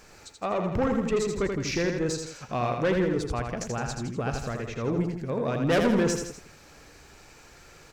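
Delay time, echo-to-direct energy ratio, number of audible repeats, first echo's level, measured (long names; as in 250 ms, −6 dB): 82 ms, −3.5 dB, 3, −5.0 dB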